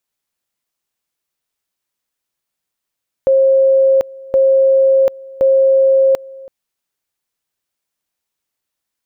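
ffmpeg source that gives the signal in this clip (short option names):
-f lavfi -i "aevalsrc='pow(10,(-7.5-23*gte(mod(t,1.07),0.74))/20)*sin(2*PI*536*t)':d=3.21:s=44100"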